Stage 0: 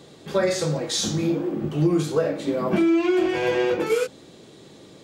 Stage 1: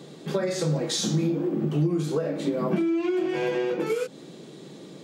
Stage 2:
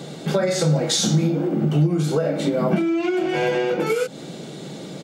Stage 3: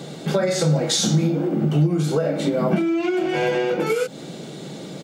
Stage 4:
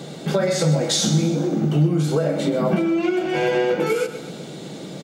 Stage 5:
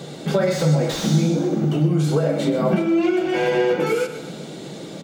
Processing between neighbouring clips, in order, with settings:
bell 350 Hz +3 dB 1.1 oct; compressor, threshold -24 dBFS, peak gain reduction 11 dB; resonant low shelf 120 Hz -8 dB, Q 3
comb 1.4 ms, depth 36%; in parallel at +1 dB: compressor, threshold -33 dBFS, peak gain reduction 13.5 dB; on the sum: gain +3.5 dB
requantised 12-bit, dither triangular
feedback echo 0.127 s, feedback 54%, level -12.5 dB
flange 0.63 Hz, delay 1.6 ms, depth 7 ms, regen -65%; reverb, pre-delay 60 ms, DRR 13 dB; slew limiter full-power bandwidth 100 Hz; gain +4.5 dB

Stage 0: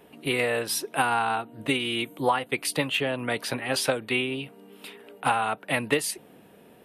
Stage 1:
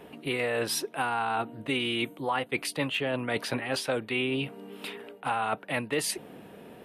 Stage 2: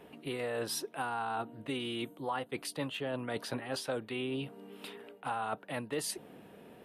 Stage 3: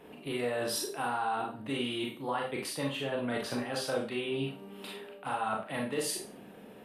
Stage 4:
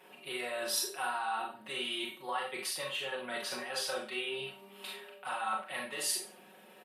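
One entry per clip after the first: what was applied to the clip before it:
high shelf 5900 Hz -7.5 dB; reverse; compressor 6:1, threshold -32 dBFS, peak gain reduction 14 dB; reverse; gain +5.5 dB
dynamic EQ 2300 Hz, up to -8 dB, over -47 dBFS, Q 2.2; gain -6 dB
Schroeder reverb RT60 0.35 s, combs from 29 ms, DRR -0.5 dB
HPF 1300 Hz 6 dB/oct; comb 5.4 ms, depth 92%

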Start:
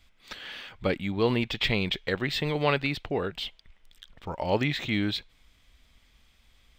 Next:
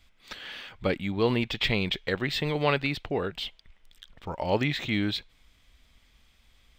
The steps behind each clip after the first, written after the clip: nothing audible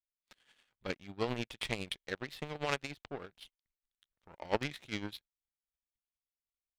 tremolo 9.9 Hz, depth 39%; power-law curve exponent 2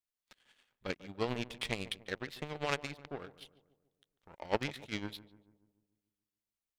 darkening echo 0.145 s, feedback 55%, low-pass 1300 Hz, level -16 dB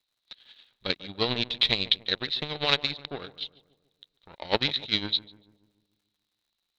synth low-pass 3900 Hz, resonance Q 12; crackle 120/s -69 dBFS; gain +5.5 dB

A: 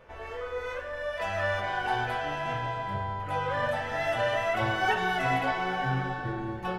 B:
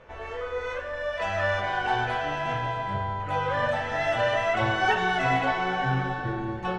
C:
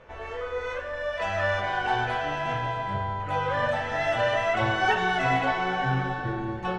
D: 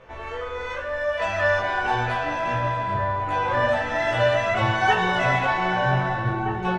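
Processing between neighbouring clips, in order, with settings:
LPF 7900 Hz 24 dB/oct; notch 4900 Hz, Q 18; gain +3 dB
nothing audible
doubler 17 ms -3 dB; outdoor echo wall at 270 m, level -7 dB; gain +1.5 dB

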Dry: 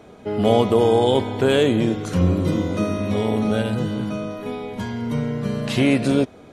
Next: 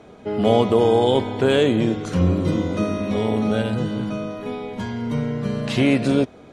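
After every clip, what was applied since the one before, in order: Bessel low-pass 8000 Hz, order 2; notches 50/100 Hz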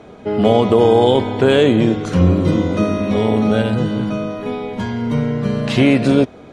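high shelf 6400 Hz -5.5 dB; maximiser +6.5 dB; gain -1 dB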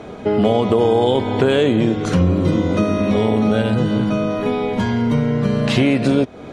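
compressor 2.5:1, threshold -22 dBFS, peak gain reduction 10 dB; gain +6 dB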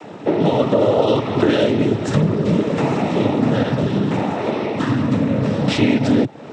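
noise vocoder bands 12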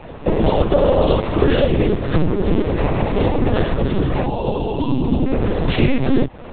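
spectral delete 4.27–5.26, 1100–2600 Hz; companded quantiser 6-bit; LPC vocoder at 8 kHz pitch kept; gain +1 dB

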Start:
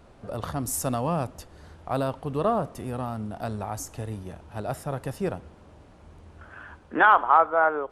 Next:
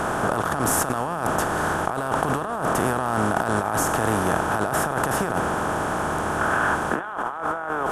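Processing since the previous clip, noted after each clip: per-bin compression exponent 0.4; negative-ratio compressor -24 dBFS, ratio -1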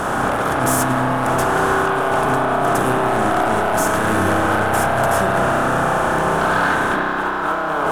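sample leveller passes 3; spring tank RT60 3.8 s, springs 31 ms, chirp 25 ms, DRR -2 dB; gain -7.5 dB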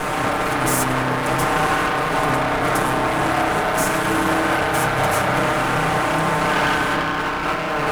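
minimum comb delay 6.6 ms

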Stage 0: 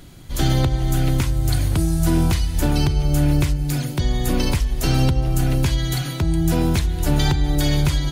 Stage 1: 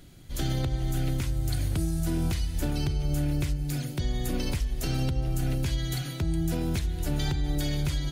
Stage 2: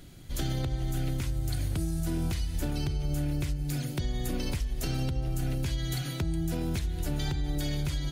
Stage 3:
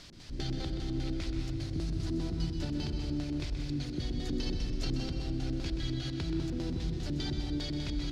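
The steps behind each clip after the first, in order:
bell 1000 Hz -5.5 dB 0.63 oct; limiter -11 dBFS, peak gain reduction 3.5 dB; gain -8 dB
compressor 2:1, threshold -31 dBFS, peak gain reduction 5 dB; gain +1.5 dB
added noise white -47 dBFS; LFO low-pass square 5 Hz 320–4700 Hz; reverb RT60 1.6 s, pre-delay 0.127 s, DRR 3.5 dB; gain -6 dB

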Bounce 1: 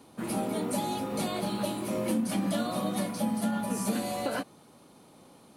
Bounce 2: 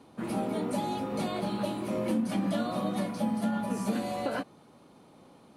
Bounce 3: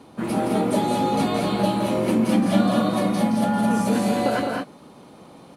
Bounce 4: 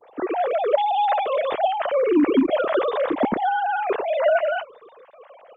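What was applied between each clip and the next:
LPF 3200 Hz 6 dB/oct
loudspeakers at several distances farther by 58 m -6 dB, 72 m -4 dB; gain +8 dB
sine-wave speech; Opus 24 kbps 48000 Hz

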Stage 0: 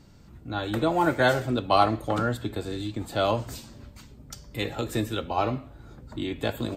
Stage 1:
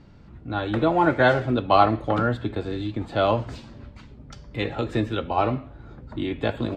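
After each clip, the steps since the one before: LPF 3100 Hz 12 dB/oct; gain +3.5 dB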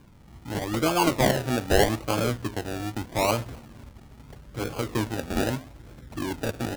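decimation with a swept rate 33×, swing 60% 0.8 Hz; gain -3 dB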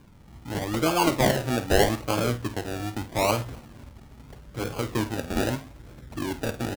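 doubler 50 ms -12.5 dB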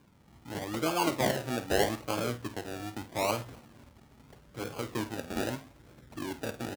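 HPF 140 Hz 6 dB/oct; gain -6 dB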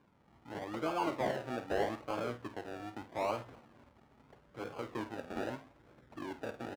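overdrive pedal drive 11 dB, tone 1000 Hz, clips at -12.5 dBFS; gain -5 dB

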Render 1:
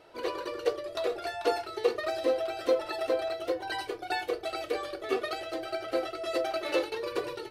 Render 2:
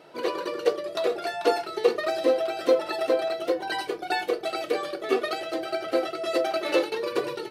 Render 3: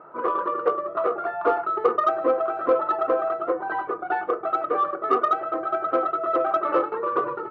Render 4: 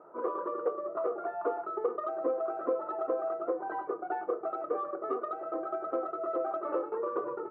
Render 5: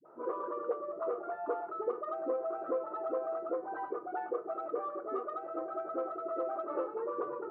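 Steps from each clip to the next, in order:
resonant low shelf 110 Hz -13.5 dB, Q 3; gain +4.5 dB
ladder low-pass 1300 Hz, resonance 80%; in parallel at -6 dB: soft clip -29 dBFS, distortion -12 dB; on the sum: gain +8.5 dB
compressor, threshold -22 dBFS, peak gain reduction 8 dB; band-pass 440 Hz, Q 0.89; gain -3.5 dB
dispersion highs, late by 55 ms, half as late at 430 Hz; gain -3 dB

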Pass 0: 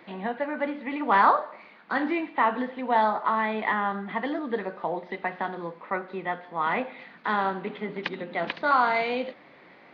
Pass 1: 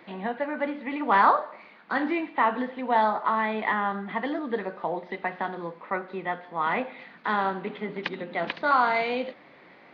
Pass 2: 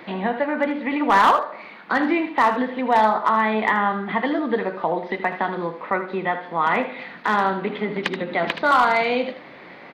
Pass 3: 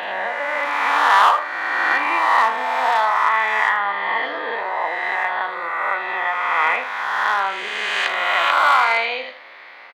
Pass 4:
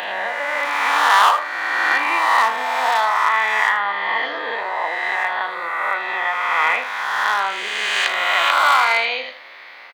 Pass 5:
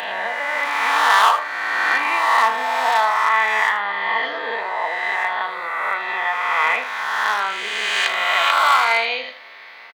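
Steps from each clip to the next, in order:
nothing audible
in parallel at +1 dB: compressor 4:1, threshold -35 dBFS, peak gain reduction 17 dB; on the sum: hard clip -13 dBFS, distortion -20 dB; echo 78 ms -11.5 dB; gain +3.5 dB
spectral swells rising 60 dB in 2.33 s; HPF 930 Hz 12 dB/oct; doubler 35 ms -12 dB
high shelf 3600 Hz +10 dB; gain -1 dB
comb 4.5 ms, depth 35%; gain -1 dB

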